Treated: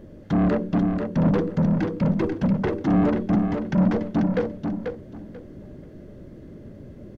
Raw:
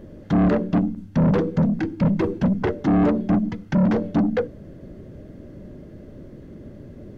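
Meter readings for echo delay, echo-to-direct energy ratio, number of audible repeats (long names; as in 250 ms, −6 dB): 489 ms, −5.5 dB, 3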